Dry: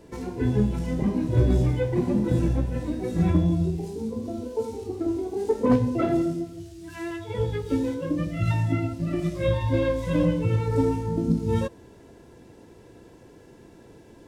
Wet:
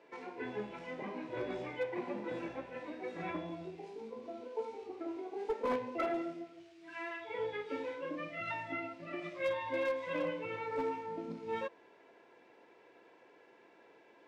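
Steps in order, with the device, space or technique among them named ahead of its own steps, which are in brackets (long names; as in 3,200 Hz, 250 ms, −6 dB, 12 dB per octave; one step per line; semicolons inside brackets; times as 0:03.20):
megaphone (band-pass filter 620–2,800 Hz; parametric band 2,300 Hz +6 dB 0.39 octaves; hard clipping −24 dBFS, distortion −21 dB)
0:06.82–0:08.42: double-tracking delay 43 ms −6 dB
level −4 dB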